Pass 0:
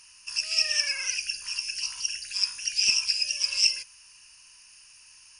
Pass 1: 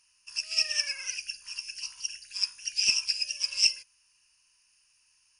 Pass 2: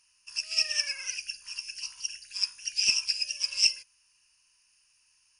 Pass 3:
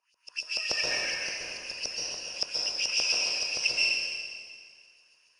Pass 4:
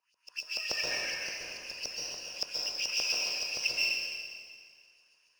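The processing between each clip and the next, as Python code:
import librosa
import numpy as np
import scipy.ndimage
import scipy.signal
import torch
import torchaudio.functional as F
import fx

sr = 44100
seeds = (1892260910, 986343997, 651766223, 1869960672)

y1 = fx.upward_expand(x, sr, threshold_db=-46.0, expansion=1.5)
y2 = y1
y3 = fx.filter_lfo_bandpass(y2, sr, shape='saw_up', hz=7.0, low_hz=550.0, high_hz=5300.0, q=2.5)
y3 = fx.rev_plate(y3, sr, seeds[0], rt60_s=2.0, hf_ratio=0.95, predelay_ms=115, drr_db=-5.0)
y3 = y3 * librosa.db_to_amplitude(5.0)
y4 = scipy.signal.medfilt(y3, 3)
y4 = y4 * librosa.db_to_amplitude(-3.5)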